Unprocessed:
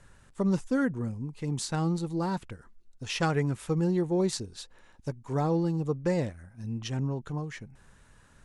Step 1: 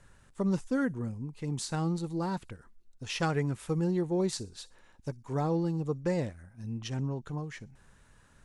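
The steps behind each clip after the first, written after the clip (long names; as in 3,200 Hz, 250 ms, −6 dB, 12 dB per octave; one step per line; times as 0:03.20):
delay with a high-pass on its return 61 ms, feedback 32%, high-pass 5,300 Hz, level −16.5 dB
level −2.5 dB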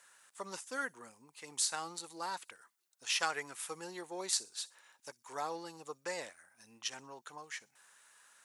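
high-pass filter 940 Hz 12 dB per octave
high-shelf EQ 7,000 Hz +10.5 dB
level +1 dB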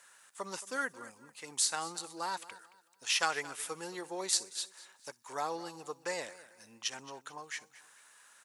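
repeating echo 222 ms, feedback 32%, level −18 dB
level +3 dB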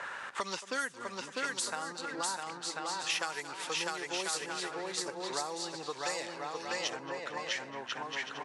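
bouncing-ball delay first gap 650 ms, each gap 0.6×, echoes 5
low-pass that shuts in the quiet parts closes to 1,400 Hz, open at −28.5 dBFS
multiband upward and downward compressor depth 100%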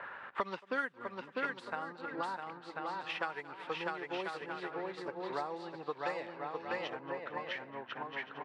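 high-frequency loss of the air 460 metres
expander for the loud parts 1.5 to 1, over −56 dBFS
level +4 dB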